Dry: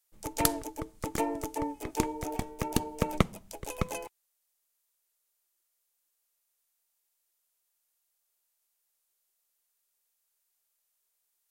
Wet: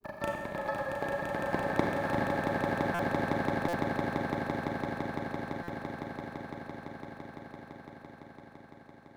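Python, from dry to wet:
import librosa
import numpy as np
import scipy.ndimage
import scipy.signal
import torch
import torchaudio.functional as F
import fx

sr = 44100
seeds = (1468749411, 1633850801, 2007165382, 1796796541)

y = fx.speed_glide(x, sr, from_pct=200, to_pct=51)
y = fx.highpass(y, sr, hz=150.0, slope=6)
y = fx.granulator(y, sr, seeds[0], grain_ms=100.0, per_s=20.0, spray_ms=100.0, spread_st=0)
y = fx.lowpass(y, sr, hz=1000.0, slope=6)
y = fx.echo_swell(y, sr, ms=169, loudest=8, wet_db=-5.5)
y = fx.rev_schroeder(y, sr, rt60_s=1.1, comb_ms=30, drr_db=2.5)
y = fx.buffer_glitch(y, sr, at_s=(2.94, 3.68, 5.63), block=256, repeats=8)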